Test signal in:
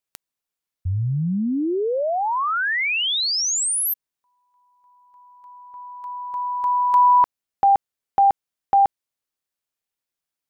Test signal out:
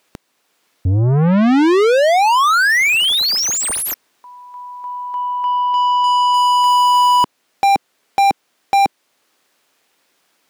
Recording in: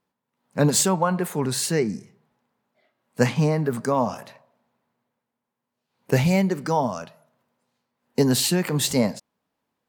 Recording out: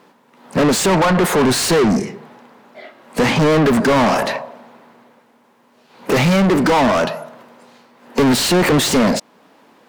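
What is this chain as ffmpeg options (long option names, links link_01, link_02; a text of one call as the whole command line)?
ffmpeg -i in.wav -filter_complex "[0:a]alimiter=limit=-14.5dB:level=0:latency=1:release=493,equalizer=frequency=270:width=0.62:gain=8.5,asplit=2[link_01][link_02];[link_02]highpass=frequency=720:poles=1,volume=36dB,asoftclip=type=tanh:threshold=-7dB[link_03];[link_01][link_03]amix=inputs=2:normalize=0,lowpass=frequency=3500:poles=1,volume=-6dB" out.wav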